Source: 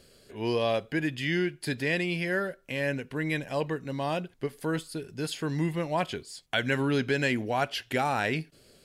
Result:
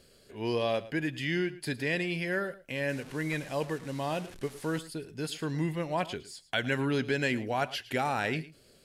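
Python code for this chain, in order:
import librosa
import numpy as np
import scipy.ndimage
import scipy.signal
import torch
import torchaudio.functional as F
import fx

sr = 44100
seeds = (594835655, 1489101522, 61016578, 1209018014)

p1 = fx.delta_mod(x, sr, bps=64000, step_db=-39.5, at=(2.89, 4.79))
p2 = p1 + fx.echo_single(p1, sr, ms=110, db=-17.5, dry=0)
y = F.gain(torch.from_numpy(p2), -2.5).numpy()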